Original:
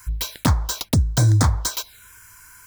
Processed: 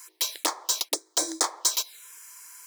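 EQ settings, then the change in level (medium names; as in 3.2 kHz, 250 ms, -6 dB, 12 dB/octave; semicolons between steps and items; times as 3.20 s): brick-wall FIR high-pass 300 Hz; peaking EQ 7 kHz +7 dB 2.2 oct; band-stop 1.5 kHz, Q 6.4; -4.0 dB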